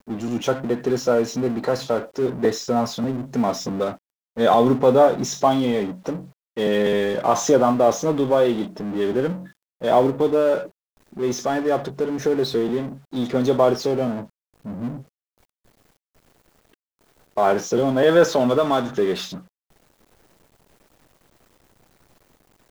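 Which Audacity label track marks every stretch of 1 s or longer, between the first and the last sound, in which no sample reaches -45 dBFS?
15.030000	16.740000	silence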